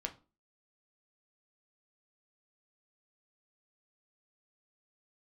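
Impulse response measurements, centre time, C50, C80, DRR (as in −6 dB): 8 ms, 15.5 dB, 22.5 dB, 3.5 dB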